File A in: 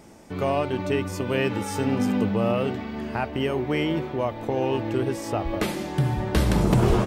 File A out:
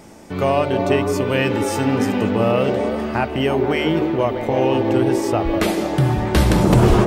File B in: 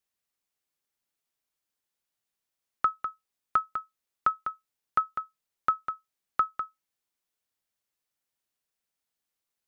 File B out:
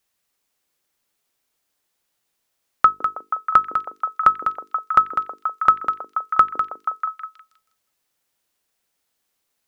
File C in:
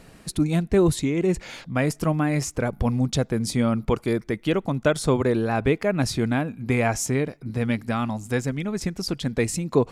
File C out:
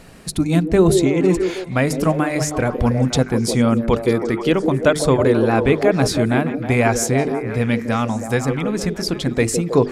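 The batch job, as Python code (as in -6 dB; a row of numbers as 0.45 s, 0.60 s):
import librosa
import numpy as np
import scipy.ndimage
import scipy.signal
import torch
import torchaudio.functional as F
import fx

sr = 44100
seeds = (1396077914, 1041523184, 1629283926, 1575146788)

y = fx.hum_notches(x, sr, base_hz=50, count=9)
y = fx.echo_stepped(y, sr, ms=160, hz=360.0, octaves=0.7, feedback_pct=70, wet_db=-2.5)
y = y * 10.0 ** (-1.5 / 20.0) / np.max(np.abs(y))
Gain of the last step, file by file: +6.5 dB, +11.5 dB, +5.5 dB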